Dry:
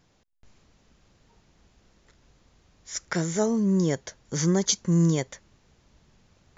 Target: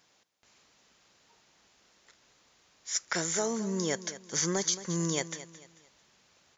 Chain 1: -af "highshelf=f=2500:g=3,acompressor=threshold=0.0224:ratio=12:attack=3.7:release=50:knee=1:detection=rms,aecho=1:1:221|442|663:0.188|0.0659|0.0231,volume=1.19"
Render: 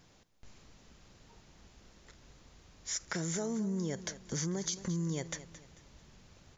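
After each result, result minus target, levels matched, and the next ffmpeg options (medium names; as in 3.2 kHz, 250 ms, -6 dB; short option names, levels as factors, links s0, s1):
compression: peak gain reduction +7.5 dB; 1 kHz band -3.5 dB
-af "highshelf=f=2500:g=3,acompressor=threshold=0.0562:ratio=12:attack=3.7:release=50:knee=1:detection=rms,aecho=1:1:221|442|663:0.188|0.0659|0.0231,volume=1.19"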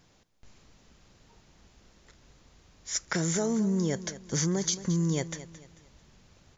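1 kHz band -3.5 dB
-af "highpass=f=820:p=1,highshelf=f=2500:g=3,acompressor=threshold=0.0562:ratio=12:attack=3.7:release=50:knee=1:detection=rms,aecho=1:1:221|442|663:0.188|0.0659|0.0231,volume=1.19"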